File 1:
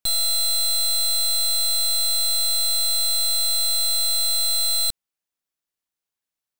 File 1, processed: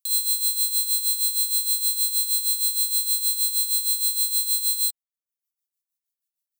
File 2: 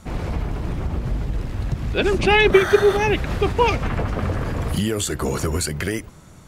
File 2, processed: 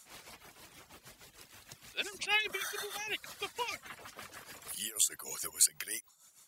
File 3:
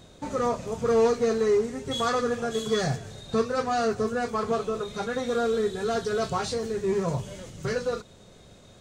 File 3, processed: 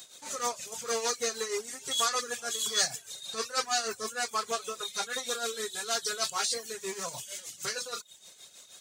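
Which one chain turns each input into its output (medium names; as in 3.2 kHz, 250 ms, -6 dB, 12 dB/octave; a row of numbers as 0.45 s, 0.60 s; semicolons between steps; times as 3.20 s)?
reverb removal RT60 0.54 s; differentiator; tremolo 6.4 Hz, depth 68%; peak normalisation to -12 dBFS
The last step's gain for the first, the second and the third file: +3.5 dB, +1.0 dB, +15.0 dB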